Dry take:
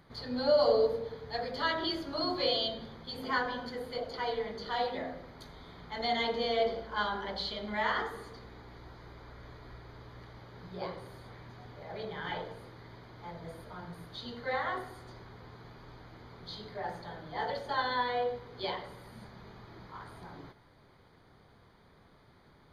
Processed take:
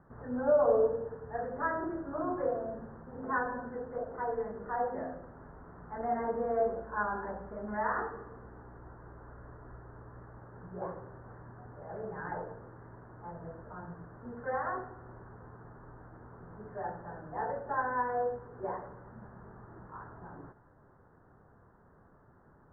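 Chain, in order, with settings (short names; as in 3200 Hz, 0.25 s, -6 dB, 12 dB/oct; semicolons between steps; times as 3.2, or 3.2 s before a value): steep low-pass 1700 Hz 72 dB/oct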